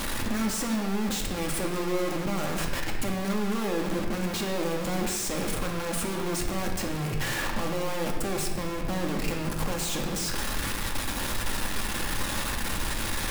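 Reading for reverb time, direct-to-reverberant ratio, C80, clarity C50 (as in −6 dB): non-exponential decay, 0.0 dB, 6.0 dB, 4.5 dB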